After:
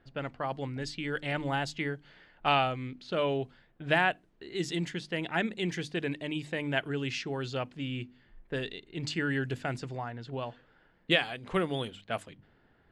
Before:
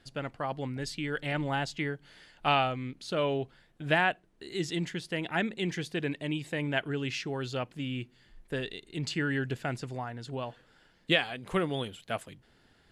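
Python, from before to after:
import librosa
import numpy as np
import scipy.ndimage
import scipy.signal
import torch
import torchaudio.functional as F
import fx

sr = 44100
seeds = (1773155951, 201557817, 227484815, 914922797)

y = fx.env_lowpass(x, sr, base_hz=1700.0, full_db=-28.0)
y = fx.hum_notches(y, sr, base_hz=50, count=6)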